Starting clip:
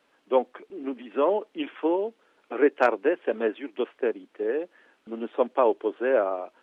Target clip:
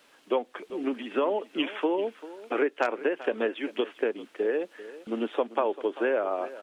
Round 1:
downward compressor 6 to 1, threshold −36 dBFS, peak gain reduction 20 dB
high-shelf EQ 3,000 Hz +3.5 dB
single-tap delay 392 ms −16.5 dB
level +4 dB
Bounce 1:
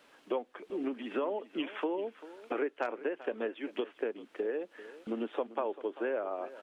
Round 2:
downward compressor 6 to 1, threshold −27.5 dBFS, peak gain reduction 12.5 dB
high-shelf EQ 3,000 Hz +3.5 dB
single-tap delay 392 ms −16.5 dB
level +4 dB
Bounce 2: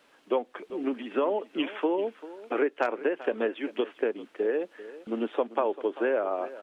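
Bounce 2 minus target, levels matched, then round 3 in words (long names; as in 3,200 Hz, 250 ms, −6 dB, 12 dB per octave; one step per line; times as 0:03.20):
4,000 Hz band −3.0 dB
downward compressor 6 to 1, threshold −27.5 dBFS, peak gain reduction 12.5 dB
high-shelf EQ 3,000 Hz +10.5 dB
single-tap delay 392 ms −16.5 dB
level +4 dB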